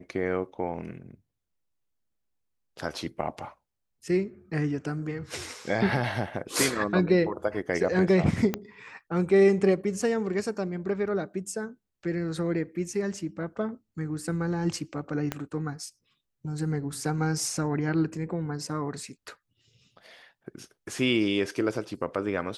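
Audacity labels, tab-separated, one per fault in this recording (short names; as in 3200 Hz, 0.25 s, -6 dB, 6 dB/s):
8.540000	8.540000	pop -13 dBFS
15.320000	15.320000	pop -14 dBFS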